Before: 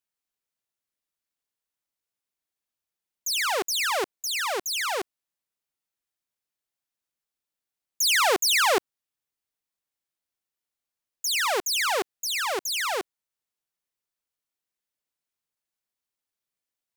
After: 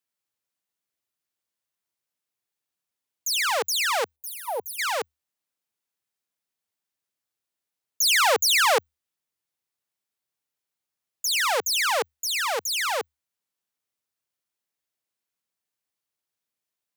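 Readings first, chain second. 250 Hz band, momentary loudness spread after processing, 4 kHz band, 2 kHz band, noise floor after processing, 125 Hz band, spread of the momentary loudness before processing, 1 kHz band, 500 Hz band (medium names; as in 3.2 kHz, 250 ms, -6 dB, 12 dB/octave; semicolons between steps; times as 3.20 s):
-11.0 dB, 13 LU, +1.0 dB, +1.5 dB, under -85 dBFS, no reading, 11 LU, +1.5 dB, +1.0 dB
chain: frequency shift +74 Hz; time-frequency box 4.16–4.79 s, 1–9 kHz -18 dB; trim +1.5 dB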